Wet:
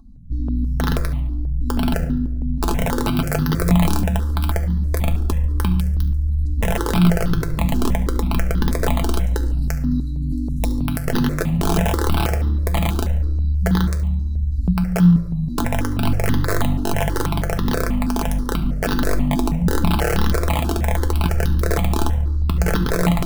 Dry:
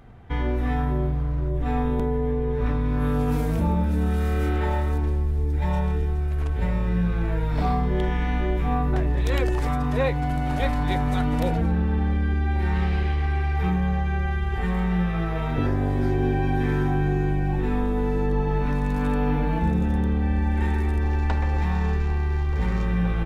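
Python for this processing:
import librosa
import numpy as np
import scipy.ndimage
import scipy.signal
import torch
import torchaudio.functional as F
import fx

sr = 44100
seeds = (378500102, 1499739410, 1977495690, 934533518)

p1 = fx.brickwall_bandstop(x, sr, low_hz=310.0, high_hz=3800.0)
p2 = fx.high_shelf(p1, sr, hz=2300.0, db=-10.0)
p3 = fx.small_body(p2, sr, hz=(770.0, 1100.0), ring_ms=50, db=14)
p4 = fx.over_compress(p3, sr, threshold_db=-22.0, ratio=-0.5)
p5 = p3 + (p4 * 10.0 ** (-2.5 / 20.0))
p6 = (np.mod(10.0 ** (11.5 / 20.0) * p5 + 1.0, 2.0) - 1.0) / 10.0 ** (11.5 / 20.0)
p7 = fx.comb_fb(p6, sr, f0_hz=170.0, decay_s=0.17, harmonics='all', damping=0.0, mix_pct=70)
p8 = fx.echo_feedback(p7, sr, ms=71, feedback_pct=44, wet_db=-17.5)
p9 = fx.room_shoebox(p8, sr, seeds[0], volume_m3=3300.0, walls='furnished', distance_m=1.5)
p10 = fx.phaser_held(p9, sr, hz=6.2, low_hz=540.0, high_hz=2300.0)
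y = p10 * 10.0 ** (8.0 / 20.0)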